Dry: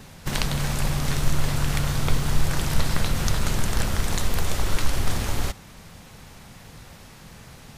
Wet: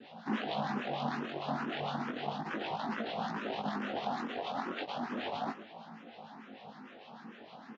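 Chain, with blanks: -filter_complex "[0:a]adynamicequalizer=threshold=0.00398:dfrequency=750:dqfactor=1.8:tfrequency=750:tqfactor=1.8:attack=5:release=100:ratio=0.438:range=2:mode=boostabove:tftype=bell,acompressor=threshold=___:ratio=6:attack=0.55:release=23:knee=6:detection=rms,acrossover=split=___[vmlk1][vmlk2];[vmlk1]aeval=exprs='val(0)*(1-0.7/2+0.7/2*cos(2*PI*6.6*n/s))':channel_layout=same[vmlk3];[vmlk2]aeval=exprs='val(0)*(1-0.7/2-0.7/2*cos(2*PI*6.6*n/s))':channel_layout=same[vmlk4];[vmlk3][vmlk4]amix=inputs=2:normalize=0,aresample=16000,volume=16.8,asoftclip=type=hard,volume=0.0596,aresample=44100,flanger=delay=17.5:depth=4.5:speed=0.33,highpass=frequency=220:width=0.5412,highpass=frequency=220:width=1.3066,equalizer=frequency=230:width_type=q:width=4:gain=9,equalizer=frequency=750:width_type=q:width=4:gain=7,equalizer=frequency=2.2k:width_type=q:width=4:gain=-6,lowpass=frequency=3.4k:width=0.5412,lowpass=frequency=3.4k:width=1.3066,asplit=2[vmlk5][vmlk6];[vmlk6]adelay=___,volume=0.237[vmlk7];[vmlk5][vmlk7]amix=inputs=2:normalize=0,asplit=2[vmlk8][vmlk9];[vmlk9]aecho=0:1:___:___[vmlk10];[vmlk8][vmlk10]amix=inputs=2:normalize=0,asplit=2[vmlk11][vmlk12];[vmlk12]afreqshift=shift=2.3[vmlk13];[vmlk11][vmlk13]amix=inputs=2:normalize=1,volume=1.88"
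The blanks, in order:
0.0891, 1100, 19, 112, 0.224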